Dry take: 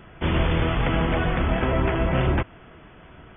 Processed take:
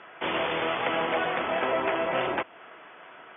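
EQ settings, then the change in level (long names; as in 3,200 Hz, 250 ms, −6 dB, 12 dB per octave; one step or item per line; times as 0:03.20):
dynamic equaliser 1,500 Hz, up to −5 dB, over −41 dBFS, Q 0.87
band-pass filter 610–3,100 Hz
+4.5 dB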